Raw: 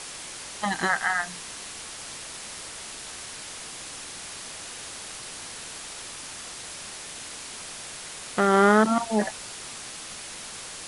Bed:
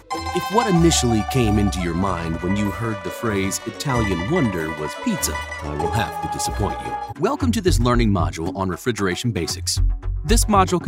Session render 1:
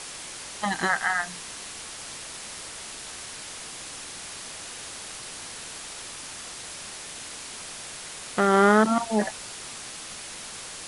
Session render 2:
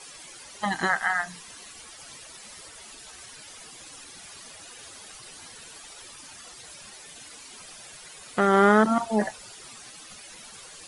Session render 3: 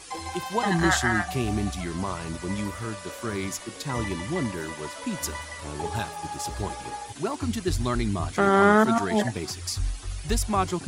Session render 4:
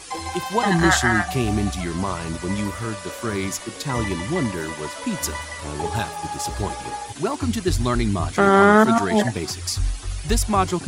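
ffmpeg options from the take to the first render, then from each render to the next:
-af anull
-af "afftdn=nr=13:nf=-40"
-filter_complex "[1:a]volume=0.355[s0];[0:a][s0]amix=inputs=2:normalize=0"
-af "volume=1.78,alimiter=limit=0.891:level=0:latency=1"

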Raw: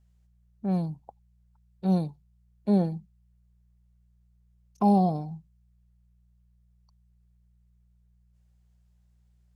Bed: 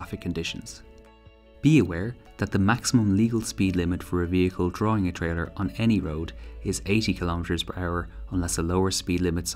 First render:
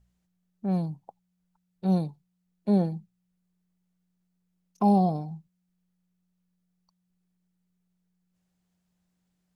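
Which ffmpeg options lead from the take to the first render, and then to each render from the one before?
-af "bandreject=f=60:t=h:w=4,bandreject=f=120:t=h:w=4"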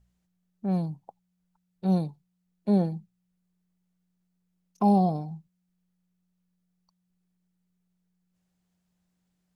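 -af anull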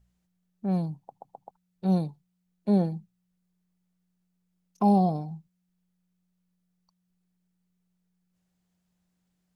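-filter_complex "[0:a]asplit=5[s0][s1][s2][s3][s4];[s0]atrim=end=1.122[s5];[s1]atrim=start=0.988:end=1.122[s6];[s2]atrim=start=0.988:end=1.122[s7];[s3]atrim=start=0.988:end=1.122[s8];[s4]atrim=start=1.508[s9];[s5][s6]acrossfade=d=0.004:c1=hsin:c2=hsin[s10];[s10][s7]acrossfade=d=0.004:c1=hsin:c2=hsin[s11];[s11][s8]acrossfade=d=0.004:c1=hsin:c2=hsin[s12];[s12][s9]acrossfade=d=0.004:c1=hsin:c2=hsin"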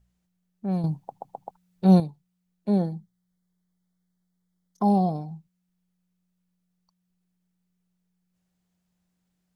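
-filter_complex "[0:a]asettb=1/sr,asplit=3[s0][s1][s2];[s0]atrim=end=2.794[s3];[s1]atrim=start=2.79:end=4.9,asetpts=PTS-STARTPTS,afade=t=in:d=0.004:c=qsin,afade=t=out:st=2.106:d=0.004:c=qsin,asuperstop=centerf=2600:order=4:qfactor=3.2[s4];[s2]atrim=start=4.896[s5];[s3][s4]acrossfade=d=0.004:c1=hsin:c2=qsin[s6];[s6][s5]acrossfade=d=0.004:c1=qsin:c2=hsin,asplit=3[s7][s8][s9];[s7]atrim=end=0.842[s10];[s8]atrim=start=0.838:end=2.002,asetpts=PTS-STARTPTS,volume=2.51[s11];[s9]atrim=start=1.998[s12];[s10][s11]acrossfade=d=0.004:c1=hsin:c2=hsin[s13];[s13][s12]acrossfade=d=0.004:c1=hsin:c2=hsin"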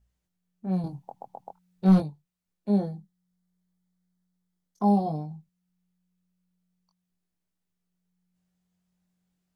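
-af "asoftclip=type=hard:threshold=0.282,flanger=delay=19.5:depth=3.3:speed=0.4"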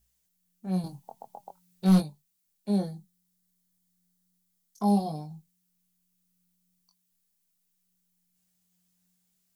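-af "flanger=delay=4.3:depth=1.6:regen=75:speed=0.84:shape=triangular,crystalizer=i=6:c=0"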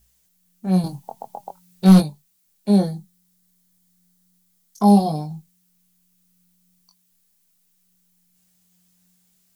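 -af "volume=3.35,alimiter=limit=0.708:level=0:latency=1"

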